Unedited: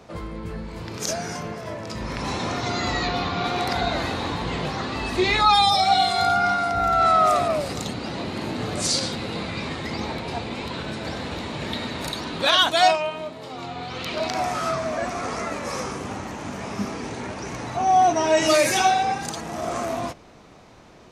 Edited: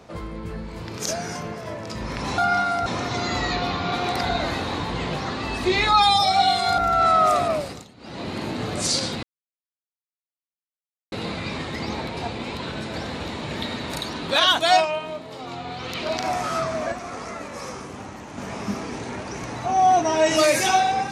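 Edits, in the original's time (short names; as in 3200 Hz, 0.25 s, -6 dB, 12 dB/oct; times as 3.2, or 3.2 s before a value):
6.3–6.78 move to 2.38
7.54–8.3 dip -19.5 dB, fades 0.33 s
9.23 insert silence 1.89 s
15.03–16.49 gain -5 dB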